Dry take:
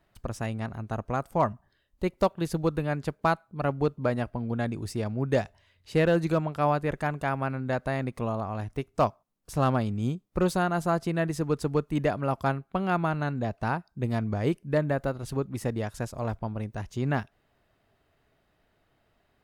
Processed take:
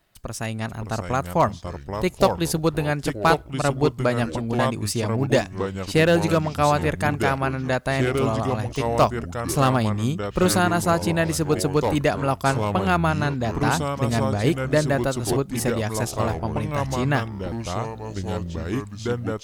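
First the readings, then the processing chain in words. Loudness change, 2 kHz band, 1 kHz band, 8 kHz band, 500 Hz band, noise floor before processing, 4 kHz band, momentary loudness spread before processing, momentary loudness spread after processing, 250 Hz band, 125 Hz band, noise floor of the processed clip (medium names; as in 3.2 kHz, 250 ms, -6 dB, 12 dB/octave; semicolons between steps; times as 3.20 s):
+6.0 dB, +8.5 dB, +6.5 dB, +15.5 dB, +6.5 dB, -71 dBFS, +13.0 dB, 7 LU, 9 LU, +6.0 dB, +6.0 dB, -39 dBFS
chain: level rider gain up to 4.5 dB; ever faster or slower copies 498 ms, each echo -4 st, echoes 3, each echo -6 dB; treble shelf 2.7 kHz +11.5 dB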